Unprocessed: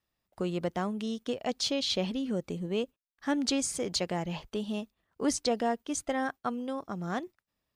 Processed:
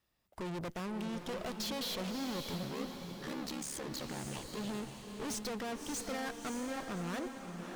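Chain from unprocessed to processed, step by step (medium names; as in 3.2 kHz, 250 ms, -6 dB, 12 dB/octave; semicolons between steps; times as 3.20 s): valve stage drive 46 dB, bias 0.8; 2.62–4.57 s: ring modulator 35 Hz; echo that smears into a reverb 589 ms, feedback 43%, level -5.5 dB; trim +8 dB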